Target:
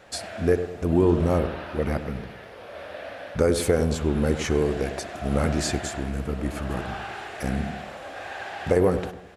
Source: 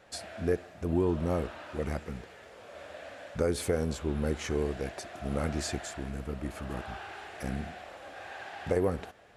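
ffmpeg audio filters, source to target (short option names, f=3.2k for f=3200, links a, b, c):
-filter_complex "[0:a]asettb=1/sr,asplit=3[a][b][c];[a]atrim=end=1.384[d];[b]atrim=start=1.38:end=3.39,asetpts=PTS-STARTPTS,afade=t=in:d=0.004:c=qsin,afade=t=out:st=2.006:d=0.004:c=qsin,equalizer=f=7.3k:t=o:w=0.53:g=-12.5[e];[c]atrim=start=3.386[f];[d][e]acrossfade=d=0.004:c1=hsin:c2=qsin[g];[g][f]acrossfade=d=0.004:c1=qsin:c2=hsin,asplit=2[h][i];[i]adelay=101,lowpass=f=930:p=1,volume=-8.5dB,asplit=2[j][k];[k]adelay=101,lowpass=f=930:p=1,volume=0.42,asplit=2[l][m];[m]adelay=101,lowpass=f=930:p=1,volume=0.42,asplit=2[n][o];[o]adelay=101,lowpass=f=930:p=1,volume=0.42,asplit=2[p][q];[q]adelay=101,lowpass=f=930:p=1,volume=0.42[r];[h][j][l][n][p][r]amix=inputs=6:normalize=0,volume=7.5dB"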